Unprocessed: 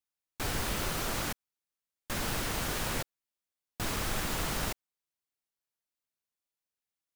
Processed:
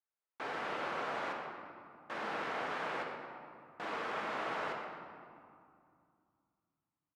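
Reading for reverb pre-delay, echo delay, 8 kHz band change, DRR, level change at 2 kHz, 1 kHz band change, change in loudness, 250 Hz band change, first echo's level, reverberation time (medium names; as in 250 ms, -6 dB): 4 ms, 119 ms, -25.0 dB, 0.5 dB, -2.0 dB, +1.0 dB, -6.0 dB, -8.5 dB, -12.5 dB, 2.4 s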